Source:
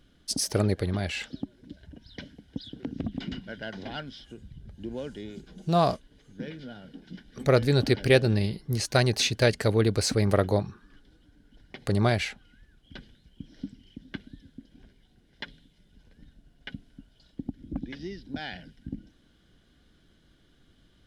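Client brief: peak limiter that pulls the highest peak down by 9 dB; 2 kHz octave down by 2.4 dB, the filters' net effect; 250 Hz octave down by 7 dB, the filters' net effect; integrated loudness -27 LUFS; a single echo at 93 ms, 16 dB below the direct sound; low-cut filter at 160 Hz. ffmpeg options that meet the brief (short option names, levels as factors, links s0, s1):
-af "highpass=160,equalizer=f=250:t=o:g=-8.5,equalizer=f=2000:t=o:g=-3,alimiter=limit=0.168:level=0:latency=1,aecho=1:1:93:0.158,volume=1.88"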